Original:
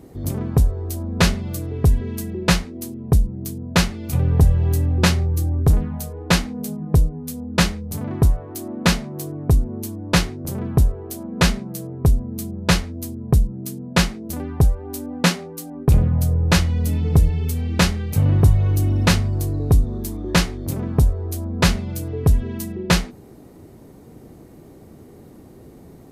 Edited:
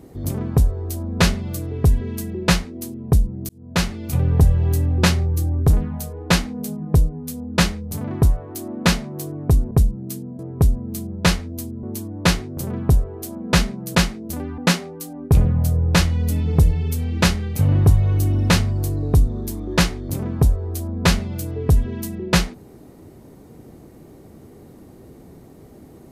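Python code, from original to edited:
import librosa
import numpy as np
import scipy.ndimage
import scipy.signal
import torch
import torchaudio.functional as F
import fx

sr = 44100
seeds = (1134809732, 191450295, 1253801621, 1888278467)

y = fx.edit(x, sr, fx.fade_in_span(start_s=3.49, length_s=0.43),
    fx.swap(start_s=9.71, length_s=2.12, other_s=13.27, other_length_s=0.68),
    fx.cut(start_s=14.58, length_s=0.57), tone=tone)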